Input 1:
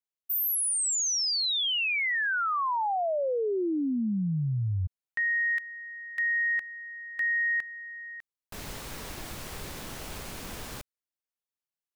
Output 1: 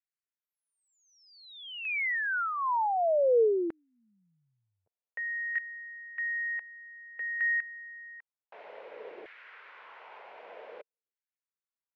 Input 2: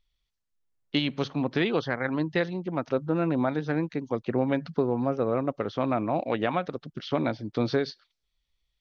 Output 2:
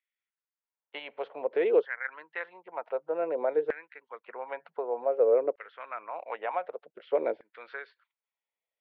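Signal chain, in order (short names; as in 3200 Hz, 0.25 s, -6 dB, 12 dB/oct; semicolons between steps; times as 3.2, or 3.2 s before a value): speaker cabinet 230–2300 Hz, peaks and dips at 270 Hz -9 dB, 460 Hz +6 dB, 780 Hz -4 dB, 1200 Hz -8 dB, 1700 Hz -4 dB; LFO high-pass saw down 0.54 Hz 400–1800 Hz; gain -4 dB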